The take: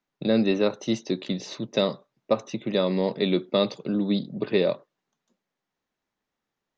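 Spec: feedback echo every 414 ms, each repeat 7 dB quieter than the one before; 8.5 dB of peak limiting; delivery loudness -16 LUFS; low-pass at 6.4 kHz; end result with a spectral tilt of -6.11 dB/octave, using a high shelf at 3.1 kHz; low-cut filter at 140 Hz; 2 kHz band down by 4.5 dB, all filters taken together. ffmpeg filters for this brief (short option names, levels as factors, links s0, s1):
-af "highpass=140,lowpass=6400,equalizer=f=2000:t=o:g=-4,highshelf=f=3100:g=-4.5,alimiter=limit=0.133:level=0:latency=1,aecho=1:1:414|828|1242|1656|2070:0.447|0.201|0.0905|0.0407|0.0183,volume=4.47"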